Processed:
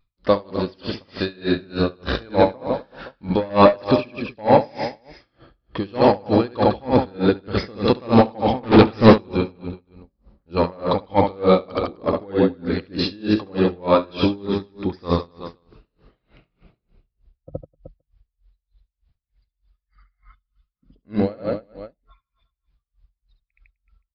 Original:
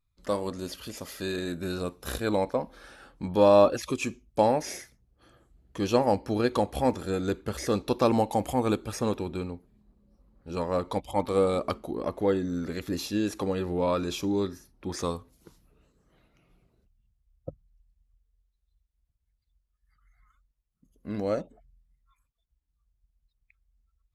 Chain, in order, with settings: on a send: reverse bouncing-ball echo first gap 70 ms, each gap 1.2×, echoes 5; 8.63–9.18 s: on the sum: waveshaping leveller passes 3; in parallel at -8 dB: sine folder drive 11 dB, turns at -2.5 dBFS; 20.35–20.75 s: on the sum: time-frequency box 300–2400 Hz -14 dB; resampled via 11.025 kHz; logarithmic tremolo 3.3 Hz, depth 29 dB; trim +3 dB

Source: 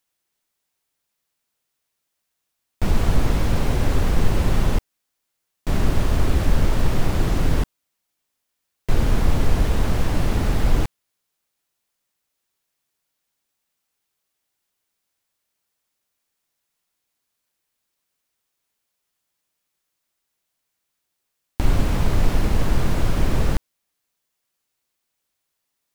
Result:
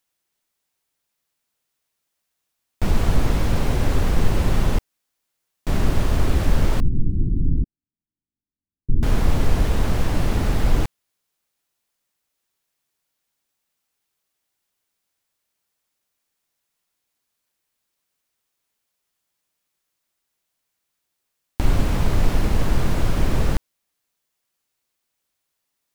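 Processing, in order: 6.80–9.03 s: inverse Chebyshev low-pass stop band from 610 Hz, stop band 40 dB

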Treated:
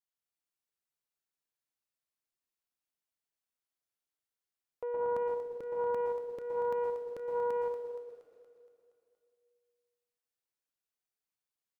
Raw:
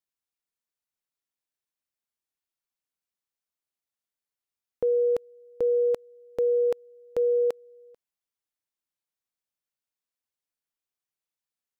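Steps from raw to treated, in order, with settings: peak limiter -25 dBFS, peak gain reduction 5.5 dB; saturation -23 dBFS, distortion -27 dB; feedback delay 235 ms, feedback 55%, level -8 dB; plate-style reverb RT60 1.9 s, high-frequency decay 0.8×, pre-delay 105 ms, DRR 0.5 dB; loudspeaker Doppler distortion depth 0.43 ms; trim -6 dB

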